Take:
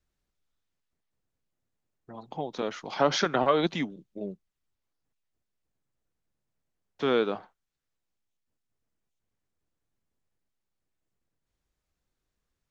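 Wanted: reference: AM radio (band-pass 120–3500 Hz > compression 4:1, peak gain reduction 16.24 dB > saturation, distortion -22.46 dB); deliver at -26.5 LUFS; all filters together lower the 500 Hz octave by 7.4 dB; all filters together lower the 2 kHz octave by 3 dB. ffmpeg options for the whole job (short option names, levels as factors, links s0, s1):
-af "highpass=120,lowpass=3500,equalizer=f=500:t=o:g=-9,equalizer=f=2000:t=o:g=-3,acompressor=threshold=0.00891:ratio=4,asoftclip=threshold=0.0316,volume=8.91"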